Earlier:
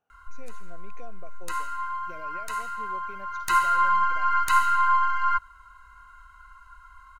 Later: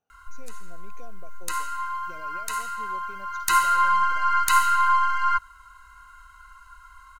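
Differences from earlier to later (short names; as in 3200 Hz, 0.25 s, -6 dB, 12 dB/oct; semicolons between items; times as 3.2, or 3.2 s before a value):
speech: add bell 1900 Hz -7.5 dB 2.6 oct; master: add high shelf 3100 Hz +10 dB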